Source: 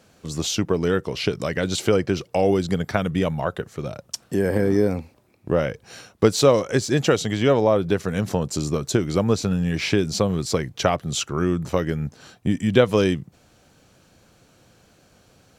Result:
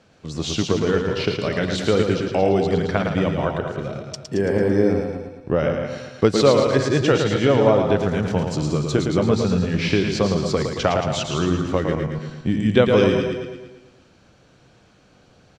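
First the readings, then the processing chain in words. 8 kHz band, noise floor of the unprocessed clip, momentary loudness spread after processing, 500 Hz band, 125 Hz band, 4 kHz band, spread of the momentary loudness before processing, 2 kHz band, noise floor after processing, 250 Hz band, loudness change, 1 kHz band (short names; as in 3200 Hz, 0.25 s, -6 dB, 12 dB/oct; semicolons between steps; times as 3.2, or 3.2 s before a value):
-4.0 dB, -58 dBFS, 11 LU, +2.5 dB, +2.0 dB, +1.0 dB, 10 LU, +2.0 dB, -54 dBFS, +2.0 dB, +2.0 dB, +2.5 dB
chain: regenerating reverse delay 0.115 s, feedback 46%, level -7 dB; LPF 5000 Hz 12 dB/oct; feedback echo 0.111 s, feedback 50%, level -6 dB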